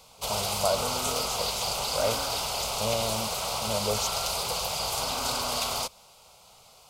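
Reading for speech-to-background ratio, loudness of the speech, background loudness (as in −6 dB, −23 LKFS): −5.0 dB, −33.5 LKFS, −28.5 LKFS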